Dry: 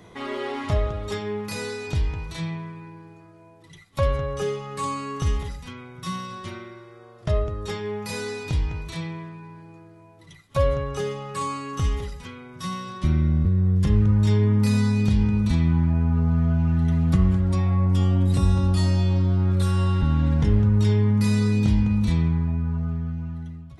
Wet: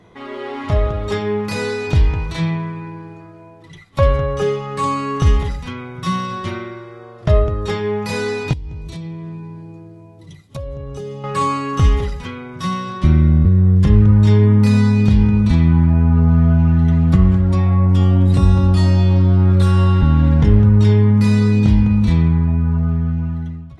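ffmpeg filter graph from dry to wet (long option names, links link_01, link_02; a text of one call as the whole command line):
ffmpeg -i in.wav -filter_complex "[0:a]asettb=1/sr,asplit=3[link_01][link_02][link_03];[link_01]atrim=end=8.534[link_04];[link_02]atrim=start=8.53:end=11.24,asetpts=PTS-STARTPTS,afade=type=in:duration=0.004:curve=qsin,afade=type=out:start_time=2.706:duration=0.004:curve=qsin,highpass=42,equalizer=frequency=1500:width=0.58:gain=-13,acompressor=threshold=-36dB:ratio=8:attack=3.2:release=140:knee=1:detection=peak[link_05];[link_03]atrim=start=11.236[link_06];[link_04][link_05]acrossfade=duration=0.004:curve1=hsin:curve2=qsin[link_07];[link_07][link_06]acrossfade=duration=0.004:curve1=qsin:curve2=hsin,lowpass=frequency=3300:poles=1,dynaudnorm=framelen=290:gausssize=5:maxgain=11.5dB" out.wav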